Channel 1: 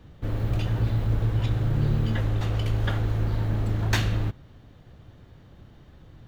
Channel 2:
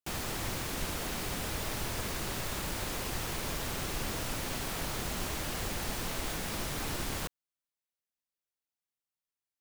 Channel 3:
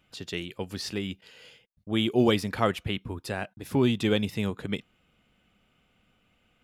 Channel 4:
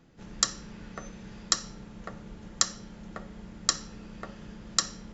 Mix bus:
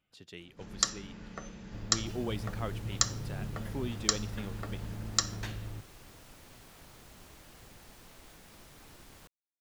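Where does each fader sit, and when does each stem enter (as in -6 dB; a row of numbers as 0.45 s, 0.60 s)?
-16.0 dB, -18.5 dB, -14.0 dB, -2.5 dB; 1.50 s, 2.00 s, 0.00 s, 0.40 s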